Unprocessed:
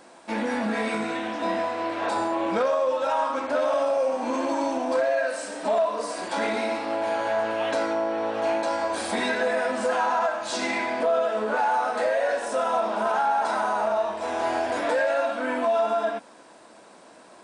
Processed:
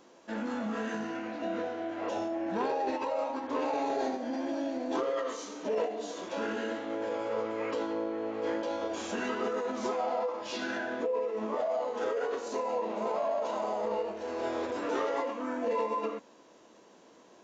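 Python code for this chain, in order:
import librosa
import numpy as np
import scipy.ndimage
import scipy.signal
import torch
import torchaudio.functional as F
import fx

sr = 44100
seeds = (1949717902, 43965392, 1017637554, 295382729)

y = fx.formant_shift(x, sr, semitones=-5)
y = y * librosa.db_to_amplitude(-7.5)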